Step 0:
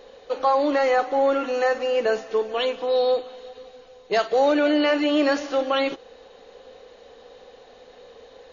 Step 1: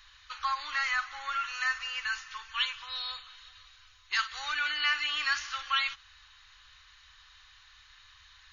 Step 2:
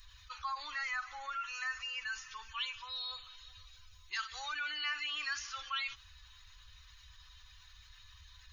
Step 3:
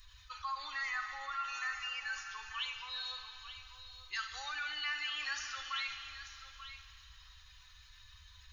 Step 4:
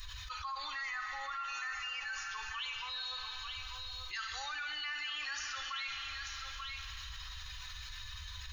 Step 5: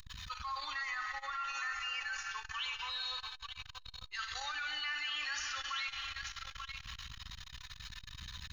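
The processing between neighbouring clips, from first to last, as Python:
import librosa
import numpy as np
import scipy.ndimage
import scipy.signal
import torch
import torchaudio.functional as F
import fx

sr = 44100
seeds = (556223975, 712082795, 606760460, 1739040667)

y1 = scipy.signal.sosfilt(scipy.signal.cheby2(4, 40, [160.0, 700.0], 'bandstop', fs=sr, output='sos'), x)
y1 = fx.end_taper(y1, sr, db_per_s=350.0)
y2 = fx.bin_expand(y1, sr, power=1.5)
y2 = fx.env_flatten(y2, sr, amount_pct=50)
y2 = y2 * librosa.db_to_amplitude(-8.0)
y3 = y2 + 10.0 ** (-12.0 / 20.0) * np.pad(y2, (int(887 * sr / 1000.0), 0))[:len(y2)]
y3 = fx.rev_fdn(y3, sr, rt60_s=3.1, lf_ratio=1.0, hf_ratio=0.95, size_ms=23.0, drr_db=6.0)
y3 = y3 * librosa.db_to_amplitude(-1.5)
y4 = fx.env_flatten(y3, sr, amount_pct=70)
y4 = y4 * librosa.db_to_amplitude(-3.5)
y5 = y4 + 10.0 ** (-14.5 / 20.0) * np.pad(y4, (int(330 * sr / 1000.0), 0))[:len(y4)]
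y5 = fx.transformer_sat(y5, sr, knee_hz=370.0)
y5 = y5 * librosa.db_to_amplitude(1.5)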